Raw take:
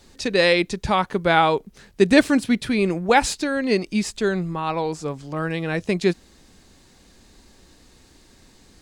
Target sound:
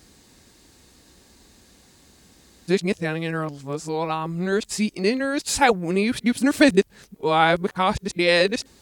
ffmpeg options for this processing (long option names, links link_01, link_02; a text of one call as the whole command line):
ffmpeg -i in.wav -af "areverse,highpass=48,highshelf=frequency=9800:gain=9,volume=-1dB" out.wav